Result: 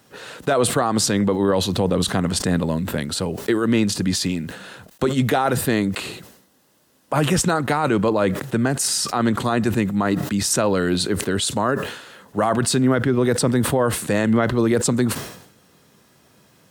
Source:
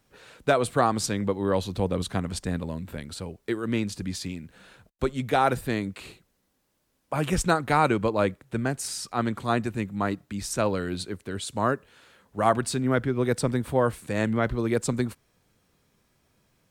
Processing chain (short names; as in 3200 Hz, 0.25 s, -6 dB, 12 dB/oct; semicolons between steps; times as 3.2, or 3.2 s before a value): HPF 120 Hz 12 dB/oct; notch 2300 Hz, Q 11; in parallel at -1 dB: compressor, threshold -34 dBFS, peak gain reduction 17.5 dB; on the sum: limiter -17.5 dBFS, peak gain reduction 10.5 dB; sustainer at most 76 dB/s; gain +8 dB